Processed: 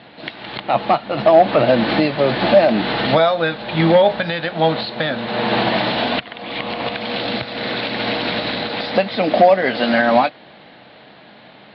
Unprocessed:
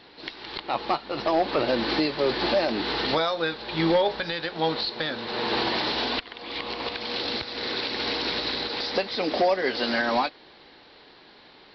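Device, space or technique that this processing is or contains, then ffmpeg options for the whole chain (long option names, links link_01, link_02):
guitar cabinet: -af "highpass=82,equalizer=frequency=130:width_type=q:width=4:gain=9,equalizer=frequency=200:width_type=q:width=4:gain=9,equalizer=frequency=390:width_type=q:width=4:gain=-7,equalizer=frequency=650:width_type=q:width=4:gain=8,equalizer=frequency=1000:width_type=q:width=4:gain=-3,lowpass=frequency=3500:width=0.5412,lowpass=frequency=3500:width=1.3066,volume=8dB"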